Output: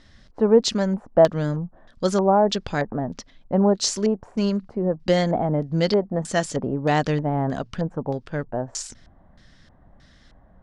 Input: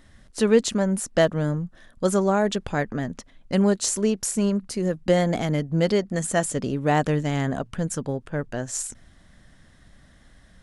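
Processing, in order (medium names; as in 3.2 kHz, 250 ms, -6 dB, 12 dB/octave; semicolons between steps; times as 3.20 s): LFO low-pass square 1.6 Hz 850–5000 Hz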